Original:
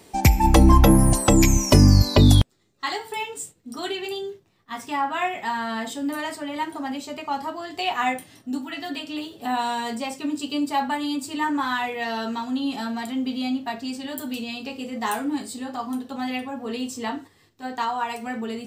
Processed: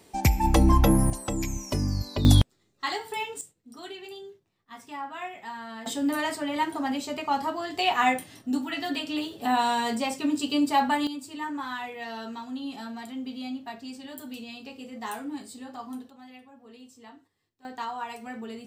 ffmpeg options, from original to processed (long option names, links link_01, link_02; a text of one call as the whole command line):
ffmpeg -i in.wav -af "asetnsamples=nb_out_samples=441:pad=0,asendcmd='1.1 volume volume -14dB;2.25 volume volume -2.5dB;3.41 volume volume -11.5dB;5.86 volume volume 1dB;11.07 volume volume -9dB;16.1 volume volume -20dB;17.65 volume volume -8dB',volume=-5.5dB" out.wav